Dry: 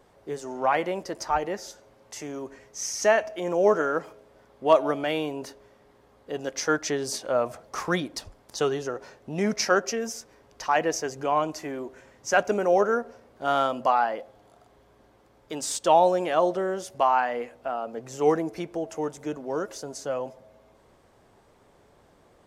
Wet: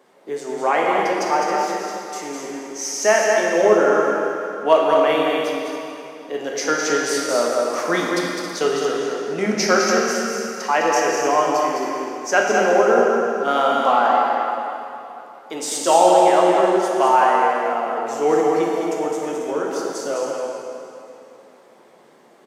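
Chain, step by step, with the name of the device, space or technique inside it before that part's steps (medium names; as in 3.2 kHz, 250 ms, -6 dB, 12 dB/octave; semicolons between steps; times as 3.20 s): stadium PA (high-pass 200 Hz 24 dB/octave; peaking EQ 2.1 kHz +3.5 dB 0.25 oct; loudspeakers at several distances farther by 71 m -5 dB, 92 m -10 dB; reverberation RT60 2.9 s, pre-delay 10 ms, DRR -1 dB); 18.63–19.51 s: treble shelf 11 kHz +7 dB; trim +3 dB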